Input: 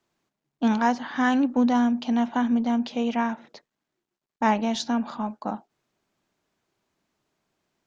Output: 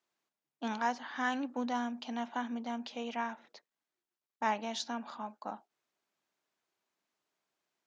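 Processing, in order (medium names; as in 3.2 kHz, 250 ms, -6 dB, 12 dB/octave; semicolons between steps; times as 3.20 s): high-pass 650 Hz 6 dB/octave; trim -7 dB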